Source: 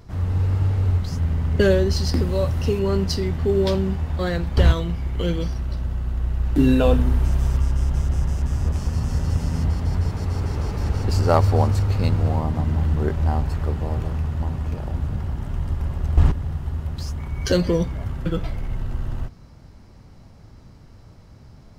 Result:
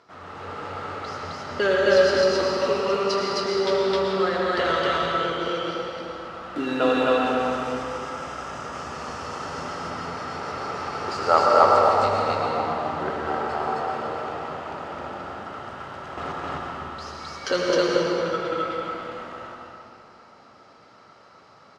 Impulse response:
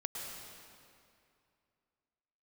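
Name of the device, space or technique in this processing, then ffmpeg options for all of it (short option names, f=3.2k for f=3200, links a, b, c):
station announcement: -filter_complex "[0:a]highpass=480,lowpass=5k,equalizer=f=1.3k:t=o:w=0.21:g=11,aecho=1:1:78.72|262.4:0.316|1[a];[1:a]atrim=start_sample=2205[b];[a][b]afir=irnorm=-1:irlink=0,volume=1.5dB"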